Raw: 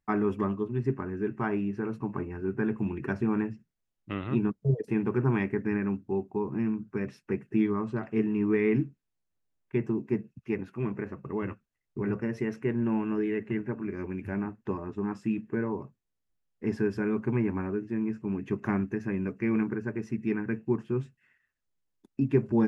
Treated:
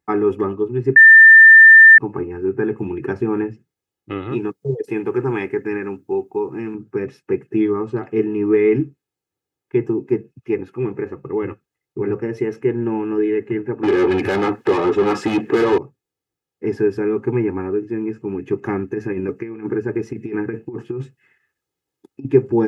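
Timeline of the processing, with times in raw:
0.96–1.98 s: bleep 1.79 kHz -8 dBFS
4.32–6.75 s: tilt EQ +2 dB/octave
13.83–15.78 s: overdrive pedal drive 32 dB, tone 2.8 kHz, clips at -18 dBFS
18.92–22.25 s: compressor with a negative ratio -31 dBFS, ratio -0.5
whole clip: Bessel high-pass 190 Hz, order 2; bass shelf 500 Hz +9 dB; comb 2.4 ms, depth 66%; trim +3.5 dB

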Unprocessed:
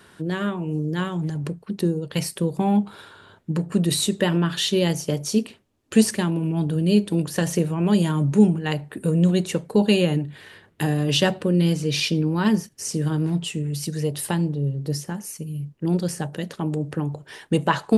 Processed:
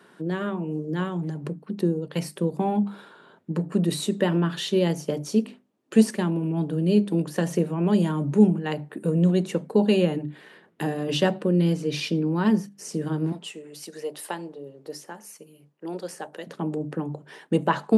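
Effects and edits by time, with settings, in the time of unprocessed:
13.32–16.47 s: high-pass 490 Hz
whole clip: high-pass 160 Hz 24 dB/octave; treble shelf 2 kHz -9.5 dB; hum notches 50/100/150/200/250/300 Hz

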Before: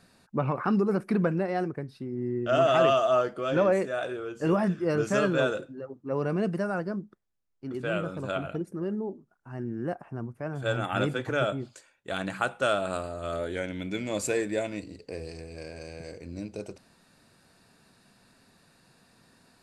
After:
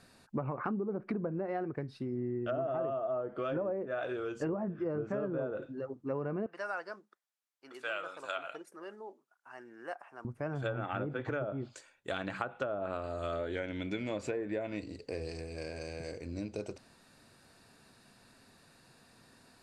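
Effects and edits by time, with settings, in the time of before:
6.46–10.25 s: high-pass 860 Hz
whole clip: low-pass that closes with the level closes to 810 Hz, closed at -21.5 dBFS; peaking EQ 180 Hz -6 dB 0.25 oct; compression, threshold -32 dBFS

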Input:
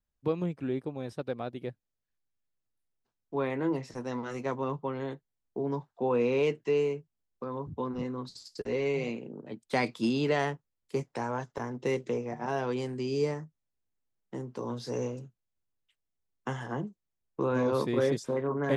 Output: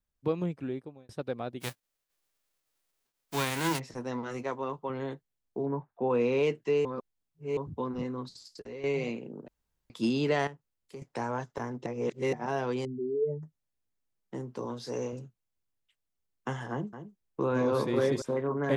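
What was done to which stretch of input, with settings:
0.54–1.09 s: fade out
1.60–3.78 s: formants flattened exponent 0.3
4.43–4.90 s: peaking EQ 150 Hz -8.5 dB 1.8 oct
5.65–6.08 s: low-pass 1.6 kHz -> 3.1 kHz 24 dB/octave
6.85–7.57 s: reverse
8.28–8.84 s: compression 2:1, threshold -47 dBFS
9.48–9.90 s: room tone
10.47–11.02 s: compression 2:1, threshold -50 dBFS
11.86–12.33 s: reverse
12.85–13.43 s: spectral contrast enhancement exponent 3.5
14.66–15.13 s: bass shelf 150 Hz -8.5 dB
16.71–18.22 s: delay 217 ms -10.5 dB

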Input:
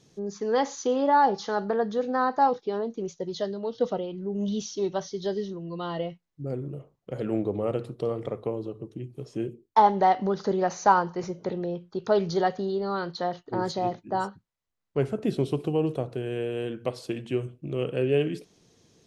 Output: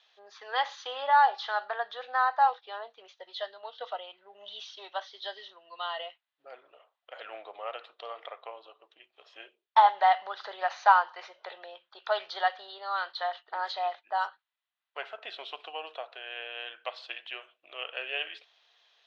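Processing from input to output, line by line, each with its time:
2.21–5.13 s: treble shelf 4.2 kHz -5.5 dB
whole clip: Chebyshev band-pass 660–3600 Hz, order 3; tilt shelf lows -8 dB, about 870 Hz; band-stop 2.2 kHz, Q 23

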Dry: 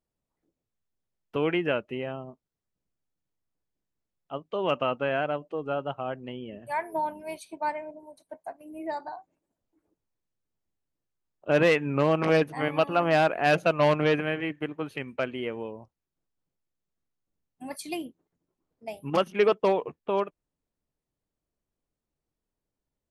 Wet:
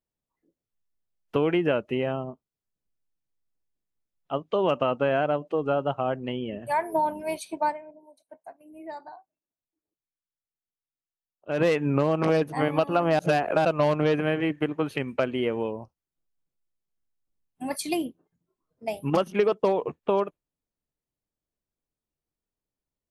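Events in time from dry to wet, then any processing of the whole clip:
7.66–11.69 s: dip -12.5 dB, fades 0.12 s
13.19–13.65 s: reverse
whole clip: spectral noise reduction 12 dB; dynamic bell 2.2 kHz, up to -6 dB, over -41 dBFS, Q 0.86; compression 6:1, threshold -26 dBFS; trim +7 dB

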